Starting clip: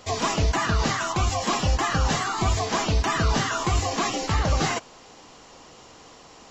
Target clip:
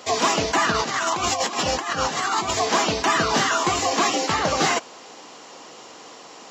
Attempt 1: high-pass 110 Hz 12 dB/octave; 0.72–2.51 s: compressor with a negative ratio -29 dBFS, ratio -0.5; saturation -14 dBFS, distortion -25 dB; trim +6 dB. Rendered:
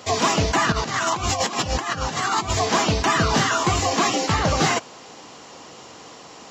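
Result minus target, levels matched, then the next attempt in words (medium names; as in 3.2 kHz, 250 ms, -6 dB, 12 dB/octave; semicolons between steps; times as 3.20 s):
125 Hz band +8.5 dB
high-pass 250 Hz 12 dB/octave; 0.72–2.51 s: compressor with a negative ratio -29 dBFS, ratio -0.5; saturation -14 dBFS, distortion -26 dB; trim +6 dB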